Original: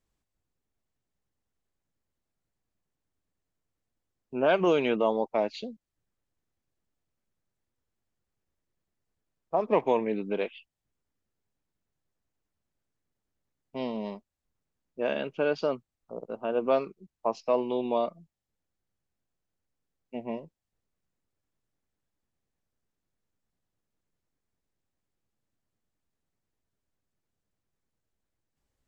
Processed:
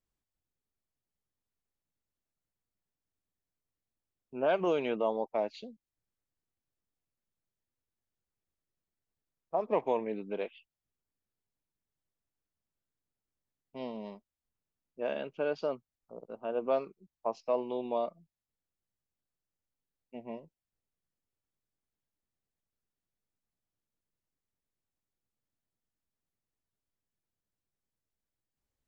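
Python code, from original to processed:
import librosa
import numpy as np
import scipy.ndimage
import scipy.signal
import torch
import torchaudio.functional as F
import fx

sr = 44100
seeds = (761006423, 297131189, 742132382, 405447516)

y = fx.dynamic_eq(x, sr, hz=660.0, q=1.0, threshold_db=-34.0, ratio=4.0, max_db=4)
y = y * librosa.db_to_amplitude(-8.0)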